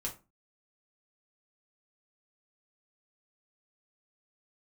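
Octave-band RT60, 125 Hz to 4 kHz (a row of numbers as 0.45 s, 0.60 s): 0.40 s, 0.40 s, 0.30 s, 0.30 s, 0.25 s, 0.20 s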